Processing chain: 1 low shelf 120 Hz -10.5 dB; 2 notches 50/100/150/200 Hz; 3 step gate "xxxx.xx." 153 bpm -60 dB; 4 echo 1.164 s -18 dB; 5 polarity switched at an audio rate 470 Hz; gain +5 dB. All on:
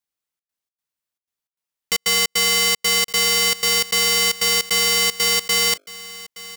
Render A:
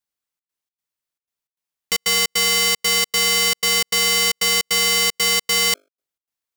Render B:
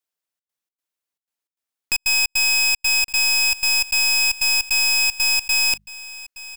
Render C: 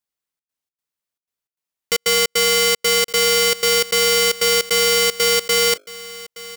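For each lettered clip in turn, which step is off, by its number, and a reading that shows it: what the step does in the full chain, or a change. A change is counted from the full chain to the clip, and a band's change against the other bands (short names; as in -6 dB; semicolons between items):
4, momentary loudness spread change -6 LU; 5, 500 Hz band -17.5 dB; 1, crest factor change -4.0 dB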